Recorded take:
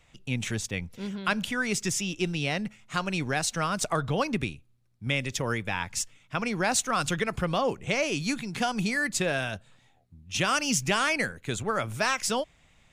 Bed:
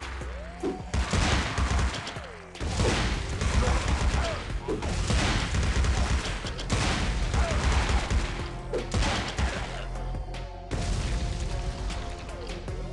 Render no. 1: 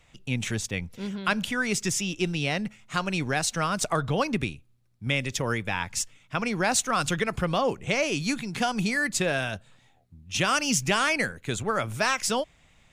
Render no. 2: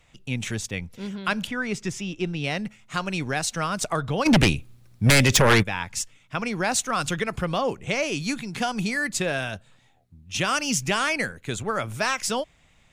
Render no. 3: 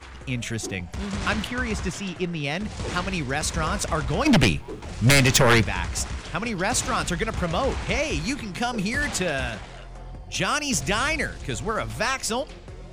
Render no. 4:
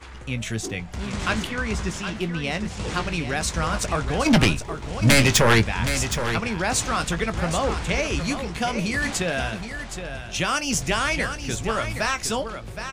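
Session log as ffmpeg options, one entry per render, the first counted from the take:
-af "volume=1.19"
-filter_complex "[0:a]asettb=1/sr,asplit=3[s0][s1][s2];[s0]atrim=end=1.474[s3];[s1]atrim=start=1.47:end=2.44,asetpts=PTS-STARTPTS,afade=t=in:d=0.004:c=qsin,afade=t=out:st=0.966:d=0.004:c=qsin,lowpass=f=2300:p=1[s4];[s2]atrim=start=2.436[s5];[s3][s4]acrossfade=d=0.004:c1=hsin:c2=qsin[s6];[s6][s5]acrossfade=d=0.004:c1=qsin:c2=hsin,asplit=3[s7][s8][s9];[s7]afade=t=out:st=4.25:d=0.02[s10];[s8]aeval=exprs='0.266*sin(PI/2*3.98*val(0)/0.266)':c=same,afade=t=in:st=4.25:d=0.02,afade=t=out:st=5.62:d=0.02[s11];[s9]afade=t=in:st=5.62:d=0.02[s12];[s10][s11][s12]amix=inputs=3:normalize=0"
-filter_complex "[1:a]volume=0.501[s0];[0:a][s0]amix=inputs=2:normalize=0"
-filter_complex "[0:a]asplit=2[s0][s1];[s1]adelay=18,volume=0.282[s2];[s0][s2]amix=inputs=2:normalize=0,aecho=1:1:768:0.355"

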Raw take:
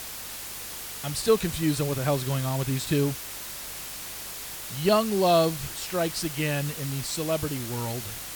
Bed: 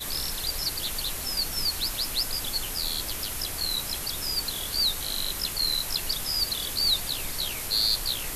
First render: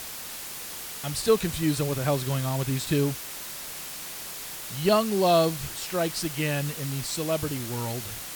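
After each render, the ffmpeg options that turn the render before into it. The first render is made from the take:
-af "bandreject=f=50:t=h:w=4,bandreject=f=100:t=h:w=4"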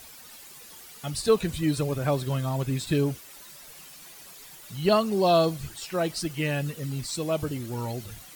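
-af "afftdn=nr=12:nf=-38"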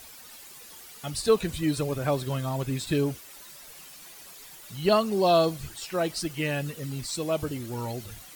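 -af "equalizer=f=150:w=1.4:g=-3"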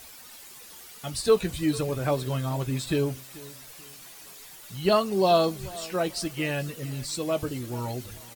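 -filter_complex "[0:a]asplit=2[s0][s1];[s1]adelay=16,volume=0.266[s2];[s0][s2]amix=inputs=2:normalize=0,aecho=1:1:435|870|1305:0.1|0.032|0.0102"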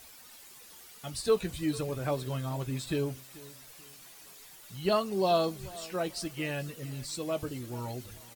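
-af "volume=0.531"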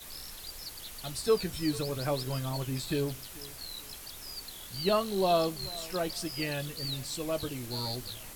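-filter_complex "[1:a]volume=0.2[s0];[0:a][s0]amix=inputs=2:normalize=0"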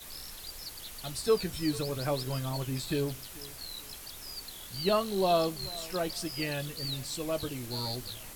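-af anull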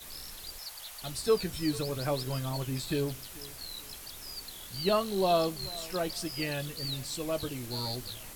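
-filter_complex "[0:a]asettb=1/sr,asplit=3[s0][s1][s2];[s0]atrim=end=0.584[s3];[s1]atrim=start=0.58:end=1.02,asetpts=PTS-STARTPTS,afade=t=in:d=0.004:c=qsin,afade=t=out:st=0.436:d=0.004:c=qsin,lowshelf=f=490:t=q:w=1.5:g=-10.5[s4];[s2]atrim=start=1.016[s5];[s3][s4]acrossfade=d=0.004:c1=hsin:c2=qsin[s6];[s6][s5]acrossfade=d=0.004:c1=qsin:c2=hsin"

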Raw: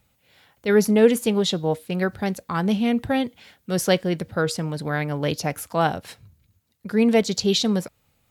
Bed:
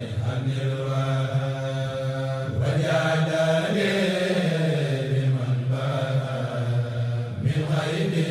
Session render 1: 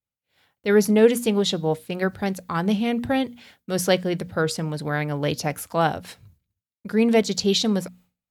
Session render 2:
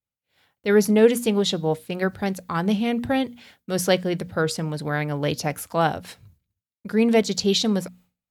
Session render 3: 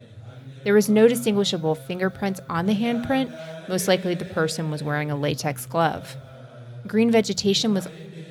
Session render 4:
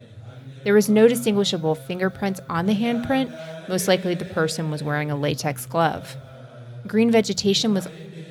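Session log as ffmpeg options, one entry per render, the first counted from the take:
-af "agate=range=0.0224:threshold=0.00355:ratio=3:detection=peak,bandreject=f=60:t=h:w=6,bandreject=f=120:t=h:w=6,bandreject=f=180:t=h:w=6,bandreject=f=240:t=h:w=6"
-af anull
-filter_complex "[1:a]volume=0.168[s0];[0:a][s0]amix=inputs=2:normalize=0"
-af "volume=1.12"

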